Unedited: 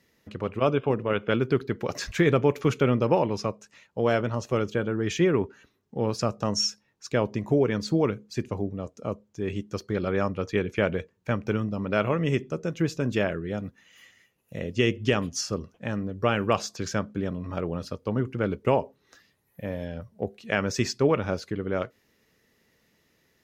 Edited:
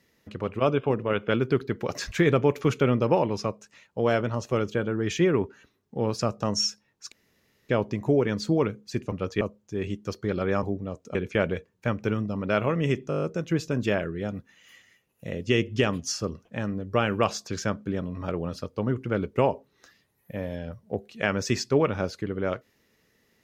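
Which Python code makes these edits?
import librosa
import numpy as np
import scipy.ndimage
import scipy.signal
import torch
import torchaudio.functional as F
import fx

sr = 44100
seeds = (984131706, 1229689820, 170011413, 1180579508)

y = fx.edit(x, sr, fx.insert_room_tone(at_s=7.12, length_s=0.57),
    fx.swap(start_s=8.55, length_s=0.52, other_s=10.29, other_length_s=0.29),
    fx.stutter(start_s=12.52, slice_s=0.02, count=8), tone=tone)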